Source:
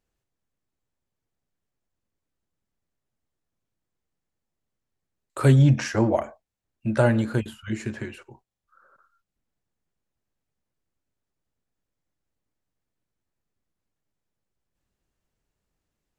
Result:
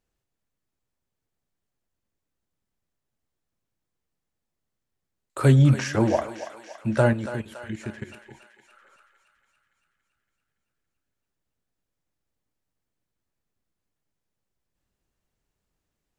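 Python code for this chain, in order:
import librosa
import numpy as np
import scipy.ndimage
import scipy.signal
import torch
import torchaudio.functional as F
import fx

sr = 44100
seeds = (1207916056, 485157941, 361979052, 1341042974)

y = fx.level_steps(x, sr, step_db=15, at=(7.13, 8.26))
y = fx.echo_thinned(y, sr, ms=282, feedback_pct=65, hz=660.0, wet_db=-10)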